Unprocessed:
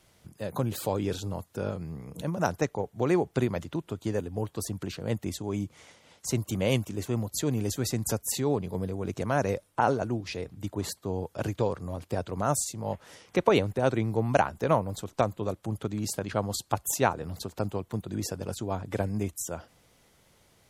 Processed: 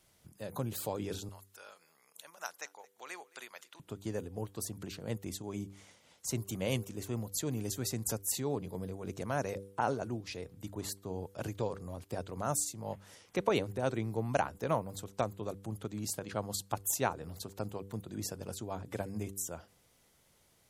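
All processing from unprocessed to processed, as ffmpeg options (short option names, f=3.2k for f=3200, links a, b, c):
-filter_complex "[0:a]asettb=1/sr,asplit=3[a][b][c];[a]atrim=end=1.294[d];[b]atrim=start=1.29:end=3.8,asetpts=PTS-STARTPTS,afade=t=in:d=0.004:c=qsin,afade=t=out:st=2.506:d=0.004:c=qsin,highpass=1.3k,aecho=1:1:219:0.0668,atrim=end_sample=110691[e];[c]atrim=start=3.796[f];[d][e]acrossfade=d=0.004:c1=hsin:c2=qsin[g];[g][f]acrossfade=d=0.004:c1=qsin:c2=hsin,highshelf=f=6.3k:g=7,bandreject=f=98.16:t=h:w=4,bandreject=f=196.32:t=h:w=4,bandreject=f=294.48:t=h:w=4,bandreject=f=392.64:t=h:w=4,bandreject=f=490.8:t=h:w=4,volume=-7.5dB"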